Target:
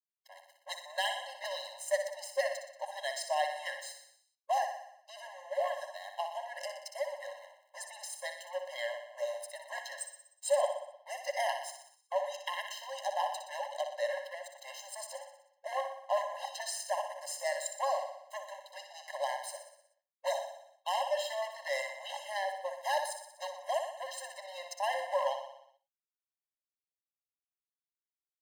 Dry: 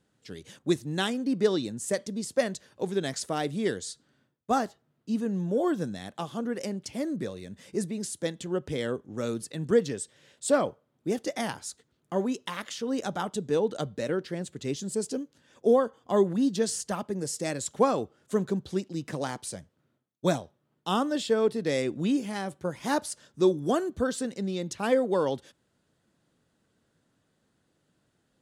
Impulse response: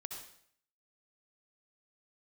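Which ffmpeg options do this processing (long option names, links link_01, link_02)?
-filter_complex "[0:a]acrossover=split=140|2100[link_01][link_02][link_03];[link_02]alimiter=limit=-19dB:level=0:latency=1:release=131[link_04];[link_01][link_04][link_03]amix=inputs=3:normalize=0,aeval=exprs='sgn(val(0))*max(abs(val(0))-0.00668,0)':channel_layout=same,aecho=1:1:61|122|183|244|305|366|427:0.398|0.231|0.134|0.0777|0.0451|0.0261|0.0152,aeval=exprs='0.1*(abs(mod(val(0)/0.1+3,4)-2)-1)':channel_layout=same,asplit=2[link_05][link_06];[1:a]atrim=start_sample=2205,afade=type=out:start_time=0.17:duration=0.01,atrim=end_sample=7938,lowpass=5000[link_07];[link_06][link_07]afir=irnorm=-1:irlink=0,volume=-4.5dB[link_08];[link_05][link_08]amix=inputs=2:normalize=0,afftfilt=real='re*eq(mod(floor(b*sr/1024/540),2),1)':imag='im*eq(mod(floor(b*sr/1024/540),2),1)':win_size=1024:overlap=0.75"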